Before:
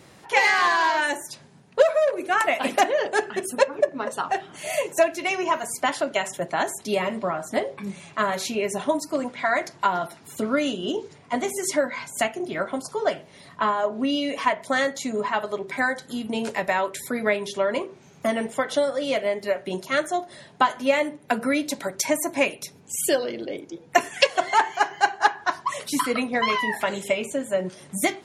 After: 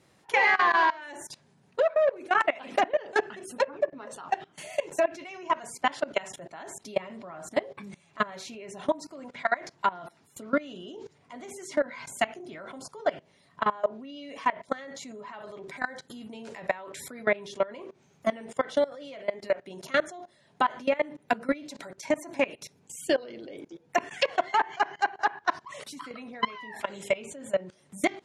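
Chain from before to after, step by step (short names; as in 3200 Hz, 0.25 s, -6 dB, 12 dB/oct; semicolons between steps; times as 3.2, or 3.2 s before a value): treble ducked by the level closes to 2600 Hz, closed at -16 dBFS; level quantiser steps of 21 dB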